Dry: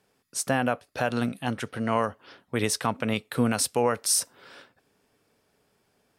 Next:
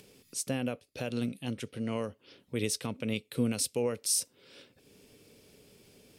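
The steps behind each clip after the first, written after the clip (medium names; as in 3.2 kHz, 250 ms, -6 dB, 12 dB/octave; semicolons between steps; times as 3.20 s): high-order bell 1.1 kHz -12 dB; upward compressor, threshold -38 dBFS; trim -5 dB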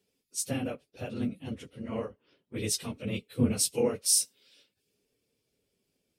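phase randomisation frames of 50 ms; three bands expanded up and down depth 70%; trim -1.5 dB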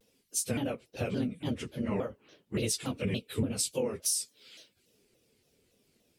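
compression 8:1, threshold -36 dBFS, peak gain reduction 16.5 dB; vibrato with a chosen wave saw down 3.5 Hz, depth 250 cents; trim +8 dB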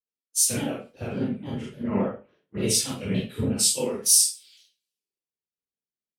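reverberation RT60 0.35 s, pre-delay 23 ms, DRR -2.5 dB; three bands expanded up and down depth 100%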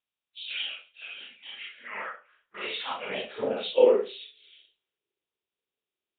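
high-pass sweep 3 kHz -> 370 Hz, 1.27–4.19 s; trim +3.5 dB; Nellymoser 16 kbps 8 kHz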